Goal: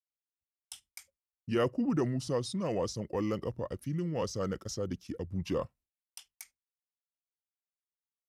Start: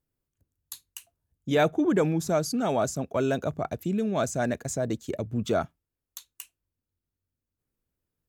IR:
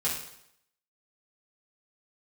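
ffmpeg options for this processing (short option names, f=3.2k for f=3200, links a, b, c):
-af "agate=range=-33dB:threshold=-50dB:ratio=3:detection=peak,asetrate=35002,aresample=44100,atempo=1.25992,volume=-6.5dB"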